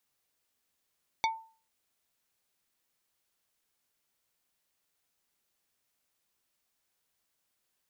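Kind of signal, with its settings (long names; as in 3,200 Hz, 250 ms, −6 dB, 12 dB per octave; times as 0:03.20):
struck wood plate, lowest mode 895 Hz, decay 0.40 s, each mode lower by 3 dB, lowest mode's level −23 dB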